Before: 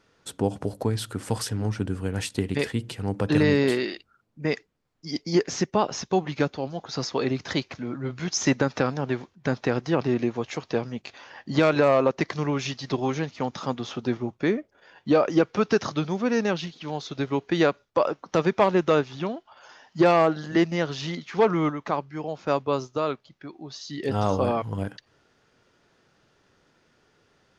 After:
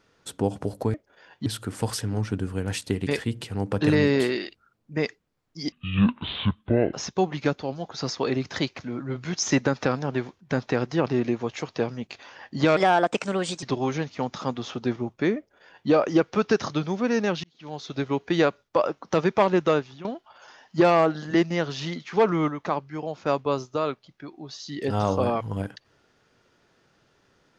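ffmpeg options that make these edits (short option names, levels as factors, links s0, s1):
-filter_complex "[0:a]asplit=9[s0][s1][s2][s3][s4][s5][s6][s7][s8];[s0]atrim=end=0.942[s9];[s1]atrim=start=14.588:end=15.112[s10];[s2]atrim=start=0.938:end=5.204[s11];[s3]atrim=start=5.2:end=5.88,asetpts=PTS-STARTPTS,asetrate=24696,aresample=44100[s12];[s4]atrim=start=5.876:end=11.714[s13];[s5]atrim=start=11.71:end=12.84,asetpts=PTS-STARTPTS,asetrate=57771,aresample=44100,atrim=end_sample=38040,asetpts=PTS-STARTPTS[s14];[s6]atrim=start=12.836:end=16.65,asetpts=PTS-STARTPTS,afade=t=out:st=3.81:d=0.004:c=hsin[s15];[s7]atrim=start=16.65:end=19.26,asetpts=PTS-STARTPTS,afade=t=in:d=0.49,afade=t=out:st=2.24:d=0.37:silence=0.199526[s16];[s8]atrim=start=19.26,asetpts=PTS-STARTPTS,afade=t=in:d=0.004:c=hsin:silence=0.199526[s17];[s9][s10]acrossfade=d=0.004:c1=hsin:c2=hsin[s18];[s18][s11]acrossfade=d=0.004:c1=hsin:c2=hsin[s19];[s19][s12]acrossfade=d=0.004:c1=hsin:c2=hsin[s20];[s20][s13]acrossfade=d=0.004:c1=hsin:c2=hsin[s21];[s21][s14]acrossfade=d=0.004:c1=hsin:c2=hsin[s22];[s15][s16][s17]concat=n=3:v=0:a=1[s23];[s22][s23]acrossfade=d=0.004:c1=hsin:c2=hsin"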